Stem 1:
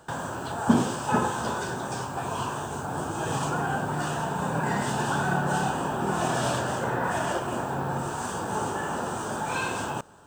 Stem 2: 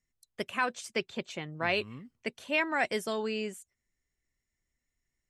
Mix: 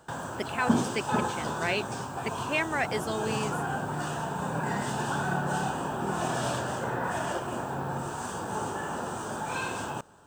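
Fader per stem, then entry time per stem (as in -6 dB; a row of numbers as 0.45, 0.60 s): -3.5, 0.0 dB; 0.00, 0.00 s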